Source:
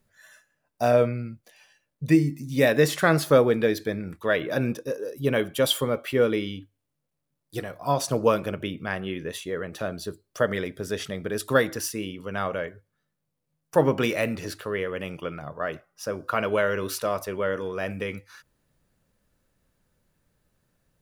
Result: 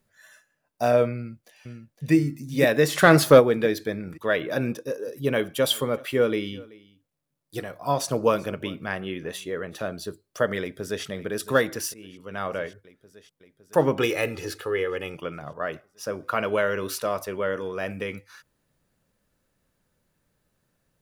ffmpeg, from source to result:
-filter_complex "[0:a]asplit=2[s0][s1];[s1]afade=t=in:st=1.14:d=0.01,afade=t=out:st=2.13:d=0.01,aecho=0:1:510|1020|1530|2040|2550|3060:0.473151|0.236576|0.118288|0.0591439|0.029572|0.014786[s2];[s0][s2]amix=inputs=2:normalize=0,asplit=3[s3][s4][s5];[s3]afade=t=out:st=2.94:d=0.02[s6];[s4]acontrast=63,afade=t=in:st=2.94:d=0.02,afade=t=out:st=3.39:d=0.02[s7];[s5]afade=t=in:st=3.39:d=0.02[s8];[s6][s7][s8]amix=inputs=3:normalize=0,asplit=3[s9][s10][s11];[s9]afade=t=out:st=5.06:d=0.02[s12];[s10]aecho=1:1:382:0.075,afade=t=in:st=5.06:d=0.02,afade=t=out:st=9.78:d=0.02[s13];[s11]afade=t=in:st=9.78:d=0.02[s14];[s12][s13][s14]amix=inputs=3:normalize=0,asplit=2[s15][s16];[s16]afade=t=in:st=10.6:d=0.01,afade=t=out:st=11.05:d=0.01,aecho=0:1:560|1120|1680|2240|2800|3360|3920|4480|5040|5600|6160:0.211349|0.158512|0.118884|0.0891628|0.0668721|0.0501541|0.0376156|0.0282117|0.0211588|0.0158691|0.0119018[s17];[s15][s17]amix=inputs=2:normalize=0,asettb=1/sr,asplit=3[s18][s19][s20];[s18]atrim=end=14.004[s21];[s19]atrim=start=14:end=15.15,asetpts=PTS-STARTPTS,afade=t=in:d=0.004:c=qsin,afade=t=out:st=1.146:d=0.004:c=qsin,aecho=1:1:2.4:0.61,atrim=end_sample=50715[s22];[s20]atrim=start=15.146[s23];[s21][s22]acrossfade=d=0.004:c1=hsin:c2=qsin[s24];[s24][s23]acrossfade=d=0.004:c1=qsin:c2=hsin,asplit=2[s25][s26];[s25]atrim=end=11.94,asetpts=PTS-STARTPTS,afade=t=out:st=11.936:d=0.004:c=hsin:silence=0.133352[s27];[s26]atrim=start=11.94,asetpts=PTS-STARTPTS,afade=t=in:d=0.63:silence=0.133352[s28];[s27][s28]concat=n=2:v=0:a=1,lowshelf=f=94:g=-5.5"

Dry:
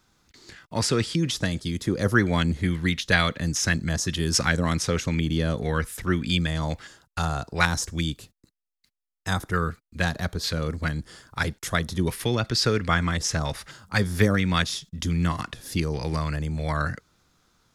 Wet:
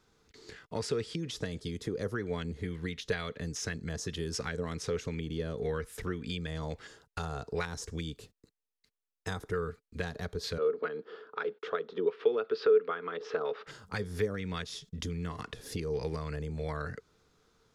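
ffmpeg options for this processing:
-filter_complex "[0:a]asettb=1/sr,asplit=3[s0][s1][s2];[s0]atrim=end=10.584[s3];[s1]atrim=start=10.58:end=13.67,asetpts=PTS-STARTPTS,afade=t=in:d=0.004:c=qsin,afade=t=out:st=3.086:d=0.004:c=qsin,highpass=f=250:w=0.5412,highpass=f=250:w=1.3066,equalizer=f=280:t=q:w=4:g=-5,equalizer=f=440:t=q:w=4:g=9,equalizer=f=1300:t=q:w=4:g=8,equalizer=f=2000:t=q:w=4:g=-6,lowpass=f=3300:w=0.5412,lowpass=f=3300:w=1.3066[s4];[s2]atrim=start=13.666[s5];[s3][s4]acrossfade=d=0.004:c1=hsin:c2=qsin[s6];[s6][s5]acrossfade=d=0.004:c1=qsin:c2=hsin,highshelf=f=9500:g=-8.5,acompressor=threshold=0.0282:ratio=4,equalizer=f=440:t=o:w=0.26:g=14.5,volume=0.631"

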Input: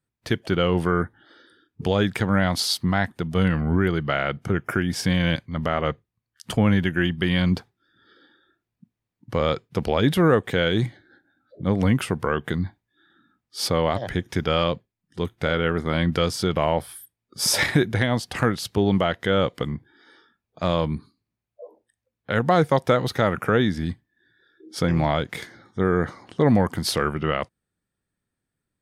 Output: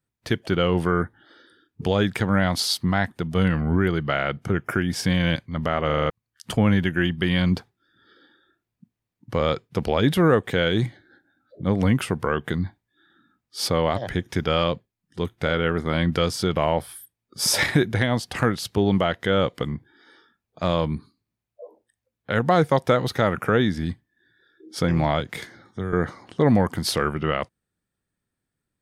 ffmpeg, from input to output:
-filter_complex "[0:a]asettb=1/sr,asplit=3[s0][s1][s2];[s0]atrim=end=25.204[s3];[s1]atrim=start=25.2:end=25.93,asetpts=PTS-STARTPTS,afade=t=in:d=0.004:c=qsin,afade=t=out:st=0.726:d=0.004:c=qsin,acrossover=split=130|3000[s4][s5][s6];[s5]acompressor=threshold=0.0447:ratio=6:attack=3.2:release=140:knee=2.83:detection=peak[s7];[s4][s7][s6]amix=inputs=3:normalize=0[s8];[s2]atrim=start=25.926[s9];[s3][s8]acrossfade=d=0.004:c1=hsin:c2=qsin[s10];[s10][s9]acrossfade=d=0.004:c1=qsin:c2=hsin,asplit=7[s11][s12][s13][s14][s15][s16][s17];[s11]atrim=end=5.902[s18];[s12]atrim=start=5.858:end=5.902[s19];[s13]atrim=start=5.858:end=5.902[s20];[s14]atrim=start=5.858:end=5.902[s21];[s15]atrim=start=5.858:end=5.902[s22];[s16]atrim=start=5.858:end=5.902[s23];[s17]atrim=start=6.098[s24];[s18][s19]acrossfade=d=0.004:c1=hsin:c2=hsin[s25];[s25][s20]acrossfade=d=0.004:c1=hsin:c2=hsin[s26];[s26][s21]acrossfade=d=0.004:c1=hsin:c2=hsin[s27];[s27][s22]acrossfade=d=0.004:c1=hsin:c2=hsin[s28];[s28][s23]acrossfade=d=0.004:c1=hsin:c2=hsin[s29];[s29][s24]acrossfade=d=0.004:c1=hsin:c2=hsin"

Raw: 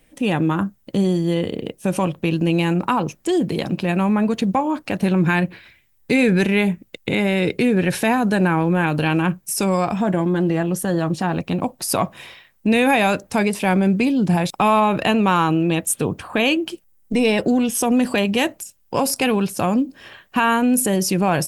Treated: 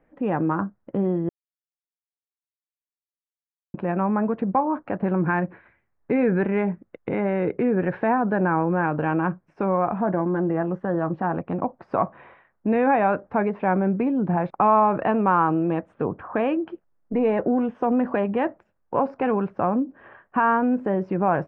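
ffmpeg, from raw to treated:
-filter_complex "[0:a]asplit=3[s0][s1][s2];[s0]atrim=end=1.29,asetpts=PTS-STARTPTS,afade=t=out:st=1.286:d=0.004:c=hsin[s3];[s1]atrim=start=1.29:end=3.74,asetpts=PTS-STARTPTS,volume=0[s4];[s2]atrim=start=3.74,asetpts=PTS-STARTPTS,afade=t=in:d=0.004:c=hsin[s5];[s3][s4][s5]concat=n=3:v=0:a=1,lowpass=f=1500:w=0.5412,lowpass=f=1500:w=1.3066,lowshelf=f=250:g=-9.5"

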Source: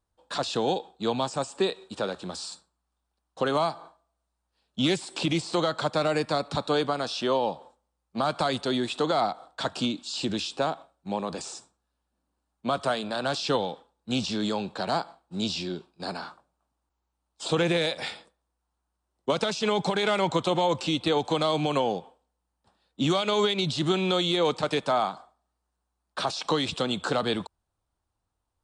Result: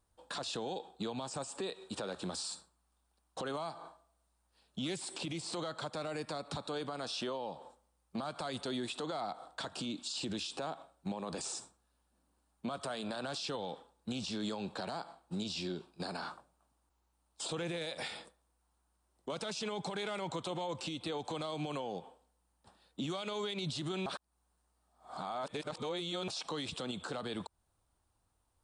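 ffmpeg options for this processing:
-filter_complex "[0:a]asplit=3[s0][s1][s2];[s0]atrim=end=24.062[s3];[s1]atrim=start=24.058:end=26.282,asetpts=PTS-STARTPTS,areverse[s4];[s2]atrim=start=26.278[s5];[s3][s4]acrossfade=d=0.004:c1=hsin:c2=hsin[s6];[s6][s5]acrossfade=d=0.004:c1=hsin:c2=hsin,acompressor=threshold=0.0112:ratio=2.5,equalizer=f=9400:w=2.4:g=6.5,alimiter=level_in=2.82:limit=0.0631:level=0:latency=1:release=83,volume=0.355,volume=1.41"

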